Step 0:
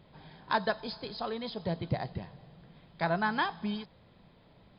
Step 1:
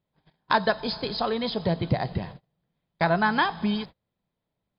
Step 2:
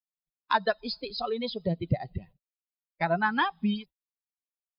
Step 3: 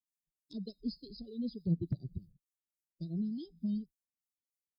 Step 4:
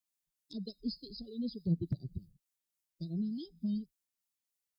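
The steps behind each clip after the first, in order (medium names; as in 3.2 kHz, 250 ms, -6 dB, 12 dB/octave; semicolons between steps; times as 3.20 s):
gate -47 dBFS, range -34 dB; in parallel at +2 dB: compression, threshold -36 dBFS, peak gain reduction 12.5 dB; on the sum: trim +4 dB
expander on every frequency bin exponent 2
inverse Chebyshev band-stop 810–2400 Hz, stop band 60 dB; Chebyshev shaper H 5 -30 dB, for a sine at -14 dBFS; harmonic tremolo 3.4 Hz, depth 70%, crossover 1.5 kHz; trim +1 dB
treble shelf 2.5 kHz +6 dB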